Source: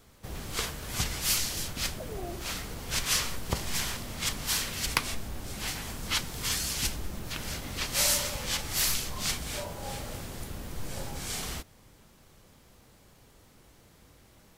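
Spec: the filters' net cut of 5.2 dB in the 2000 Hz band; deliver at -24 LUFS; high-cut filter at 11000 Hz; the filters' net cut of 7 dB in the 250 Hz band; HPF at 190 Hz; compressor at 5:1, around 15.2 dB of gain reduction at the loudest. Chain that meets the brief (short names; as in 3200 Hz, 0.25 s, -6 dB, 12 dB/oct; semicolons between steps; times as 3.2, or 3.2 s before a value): HPF 190 Hz; LPF 11000 Hz; bell 250 Hz -7 dB; bell 2000 Hz -6.5 dB; compressor 5:1, threshold -43 dBFS; gain +20 dB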